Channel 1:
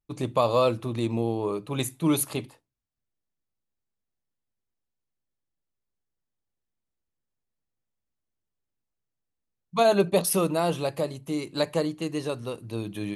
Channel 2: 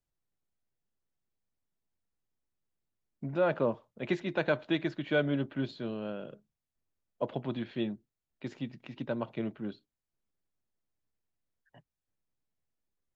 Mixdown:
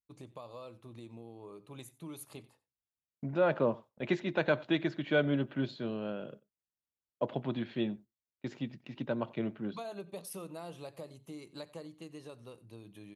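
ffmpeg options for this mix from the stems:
-filter_complex "[0:a]acompressor=threshold=-30dB:ratio=3,volume=-16.5dB,asplit=2[a][b];[b]volume=-20.5dB[c];[1:a]agate=range=-26dB:threshold=-50dB:ratio=16:detection=peak,volume=-4dB,asplit=2[d][e];[e]volume=-24dB[f];[c][f]amix=inputs=2:normalize=0,aecho=0:1:91:1[g];[a][d][g]amix=inputs=3:normalize=0,highpass=42,dynaudnorm=f=850:g=5:m=4dB"

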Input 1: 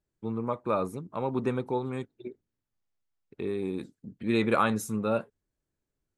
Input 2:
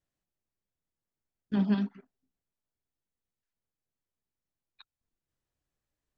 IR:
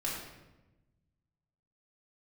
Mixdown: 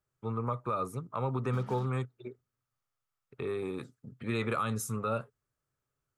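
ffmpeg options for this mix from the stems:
-filter_complex "[0:a]lowshelf=f=70:g=-10,volume=0.5dB[a];[1:a]acompressor=threshold=-26dB:ratio=6,acrusher=bits=6:mix=0:aa=0.5,volume=-8.5dB[b];[a][b]amix=inputs=2:normalize=0,equalizer=f=125:t=o:w=0.33:g=10,equalizer=f=200:t=o:w=0.33:g=-9,equalizer=f=315:t=o:w=0.33:g=-10,equalizer=f=1.25k:t=o:w=0.33:g=12,equalizer=f=4k:t=o:w=0.33:g=-3,acrossover=split=400|3000[c][d][e];[d]acompressor=threshold=-34dB:ratio=2.5[f];[c][f][e]amix=inputs=3:normalize=0,alimiter=limit=-21.5dB:level=0:latency=1:release=105"

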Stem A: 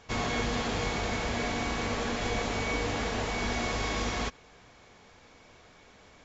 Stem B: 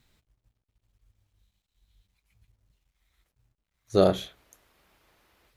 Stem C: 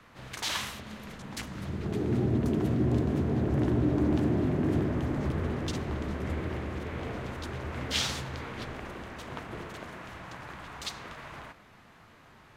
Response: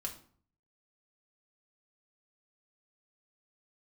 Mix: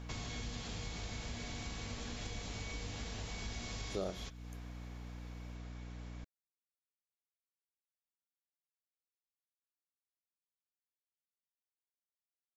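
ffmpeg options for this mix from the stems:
-filter_complex "[0:a]acrossover=split=180|3000[a][b][c];[b]acompressor=threshold=-47dB:ratio=2.5[d];[a][d][c]amix=inputs=3:normalize=0,volume=-2dB[e];[1:a]volume=-5.5dB[f];[e][f]amix=inputs=2:normalize=0,aeval=exprs='val(0)+0.00562*(sin(2*PI*60*n/s)+sin(2*PI*2*60*n/s)/2+sin(2*PI*3*60*n/s)/3+sin(2*PI*4*60*n/s)/4+sin(2*PI*5*60*n/s)/5)':c=same,acompressor=threshold=-42dB:ratio=2.5"

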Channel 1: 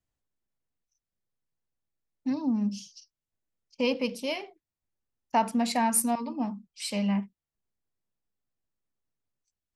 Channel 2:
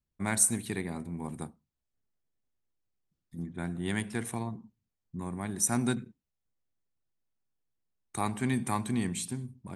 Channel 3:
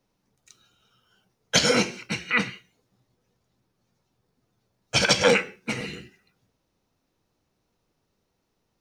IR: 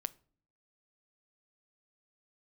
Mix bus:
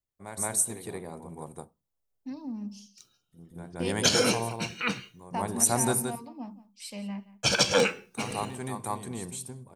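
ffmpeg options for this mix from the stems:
-filter_complex "[0:a]volume=-9.5dB,asplit=3[a][b][c];[b]volume=-18dB[d];[1:a]equalizer=f=250:t=o:w=1:g=-6,equalizer=f=500:t=o:w=1:g=10,equalizer=f=1k:t=o:w=1:g=4,equalizer=f=2k:t=o:w=1:g=-5,volume=-1dB,asplit=3[e][f][g];[f]volume=-11dB[h];[g]volume=-4.5dB[i];[2:a]agate=range=-33dB:threshold=-55dB:ratio=3:detection=peak,equalizer=f=2k:w=7.2:g=-12,adelay=2500,volume=-7.5dB,asplit=2[j][k];[k]volume=-4.5dB[l];[c]apad=whole_len=430290[m];[e][m]sidechaingate=range=-33dB:threshold=-55dB:ratio=16:detection=peak[n];[3:a]atrim=start_sample=2205[o];[h][l]amix=inputs=2:normalize=0[p];[p][o]afir=irnorm=-1:irlink=0[q];[d][i]amix=inputs=2:normalize=0,aecho=0:1:173:1[r];[a][n][j][q][r]amix=inputs=5:normalize=0,highshelf=f=8.9k:g=9"

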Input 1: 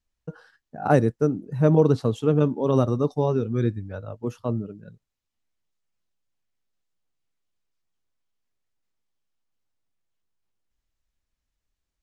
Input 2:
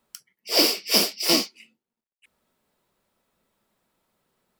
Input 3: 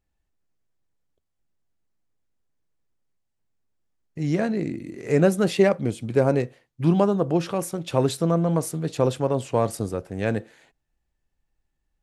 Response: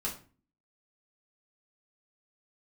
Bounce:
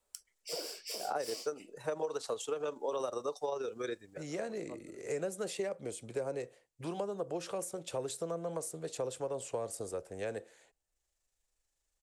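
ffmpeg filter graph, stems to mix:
-filter_complex "[0:a]highpass=f=640:p=1,tremolo=f=25:d=0.4,adelay=250,volume=-0.5dB[a];[1:a]acompressor=threshold=-27dB:ratio=5,volume=-11.5dB[b];[2:a]acrossover=split=450[c][d];[d]acompressor=threshold=-28dB:ratio=6[e];[c][e]amix=inputs=2:normalize=0,volume=-11dB,asplit=2[f][g];[g]apad=whole_len=541196[h];[a][h]sidechaincompress=threshold=-57dB:ratio=3:attack=16:release=402[i];[i][b]amix=inputs=2:normalize=0,lowshelf=f=180:g=-10.5,acompressor=threshold=-29dB:ratio=6,volume=0dB[j];[f][j]amix=inputs=2:normalize=0,equalizer=f=125:t=o:w=1:g=-5,equalizer=f=250:t=o:w=1:g=-6,equalizer=f=500:t=o:w=1:g=8,equalizer=f=8k:t=o:w=1:g=12,acrossover=split=350|810[k][l][m];[k]acompressor=threshold=-46dB:ratio=4[n];[l]acompressor=threshold=-38dB:ratio=4[o];[m]acompressor=threshold=-40dB:ratio=4[p];[n][o][p]amix=inputs=3:normalize=0"

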